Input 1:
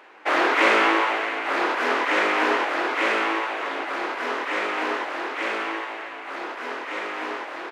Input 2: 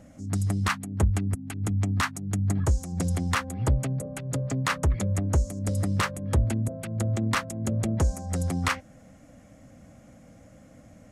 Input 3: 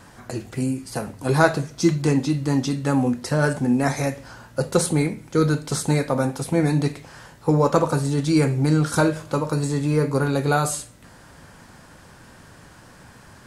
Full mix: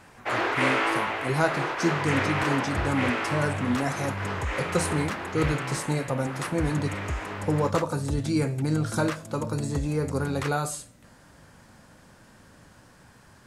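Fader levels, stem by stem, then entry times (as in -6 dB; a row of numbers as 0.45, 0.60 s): -6.0, -8.5, -7.0 dB; 0.00, 1.75, 0.00 s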